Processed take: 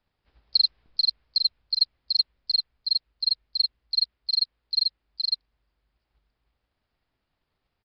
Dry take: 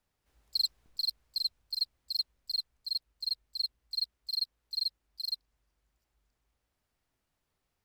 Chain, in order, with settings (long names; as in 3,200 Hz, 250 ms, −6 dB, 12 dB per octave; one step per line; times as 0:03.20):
downsampling to 11,025 Hz
dynamic equaliser 2,200 Hz, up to +3 dB, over −46 dBFS, Q 1.1
transient designer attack +7 dB, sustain 0 dB
level +3 dB